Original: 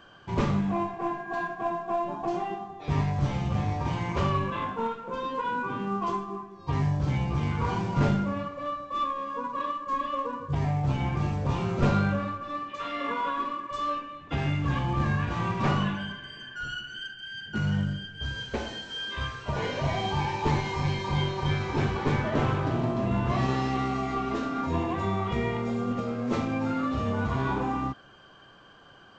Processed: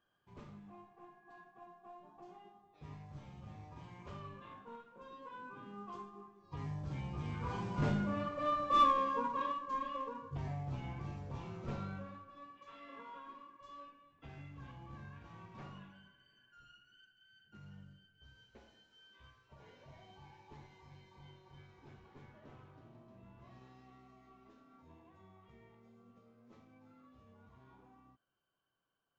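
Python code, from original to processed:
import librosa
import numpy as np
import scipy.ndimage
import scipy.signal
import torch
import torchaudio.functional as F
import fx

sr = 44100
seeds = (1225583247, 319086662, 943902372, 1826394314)

p1 = fx.doppler_pass(x, sr, speed_mps=8, closest_m=1.9, pass_at_s=8.8)
p2 = 10.0 ** (-37.0 / 20.0) * np.tanh(p1 / 10.0 ** (-37.0 / 20.0))
p3 = p1 + (p2 * librosa.db_to_amplitude(-11.5))
y = p3 * librosa.db_to_amplitude(1.5)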